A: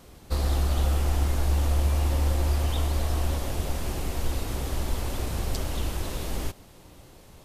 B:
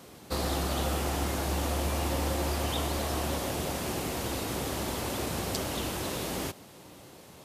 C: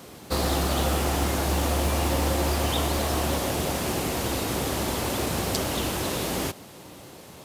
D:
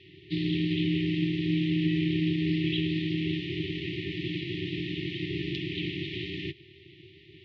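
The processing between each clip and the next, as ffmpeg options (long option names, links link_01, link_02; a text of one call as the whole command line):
ffmpeg -i in.wav -af "highpass=140,volume=2.5dB" out.wav
ffmpeg -i in.wav -af "acrusher=bits=6:mode=log:mix=0:aa=0.000001,volume=5.5dB" out.wav
ffmpeg -i in.wav -af "afftfilt=real='re*(1-between(b*sr/4096,170,2200))':imag='im*(1-between(b*sr/4096,170,2200))':win_size=4096:overlap=0.75,aeval=exprs='val(0)*sin(2*PI*330*n/s)':channel_layout=same,highpass=frequency=180:width_type=q:width=0.5412,highpass=frequency=180:width_type=q:width=1.307,lowpass=frequency=3500:width_type=q:width=0.5176,lowpass=frequency=3500:width_type=q:width=0.7071,lowpass=frequency=3500:width_type=q:width=1.932,afreqshift=-92,volume=3.5dB" out.wav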